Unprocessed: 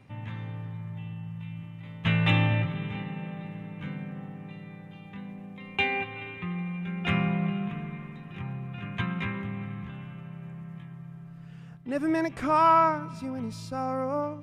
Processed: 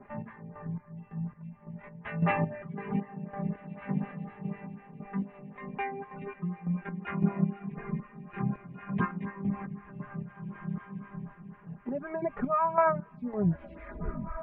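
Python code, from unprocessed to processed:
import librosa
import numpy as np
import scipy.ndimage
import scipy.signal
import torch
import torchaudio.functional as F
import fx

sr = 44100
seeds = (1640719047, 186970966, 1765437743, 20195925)

p1 = fx.tape_stop_end(x, sr, length_s=1.29)
p2 = fx.dereverb_blind(p1, sr, rt60_s=0.84)
p3 = p2 + 0.91 * np.pad(p2, (int(4.9 * sr / 1000.0), 0))[:len(p2)]
p4 = fx.rider(p3, sr, range_db=4, speed_s=0.5)
p5 = p3 + F.gain(torch.from_numpy(p4), 3.0).numpy()
p6 = scipy.signal.sosfilt(scipy.signal.butter(4, 1900.0, 'lowpass', fs=sr, output='sos'), p5)
p7 = fx.chopper(p6, sr, hz=1.8, depth_pct=65, duty_pct=40)
p8 = p7 + fx.echo_diffused(p7, sr, ms=1769, feedback_pct=40, wet_db=-14, dry=0)
p9 = fx.stagger_phaser(p8, sr, hz=4.0)
y = F.gain(torch.from_numpy(p9), -3.0).numpy()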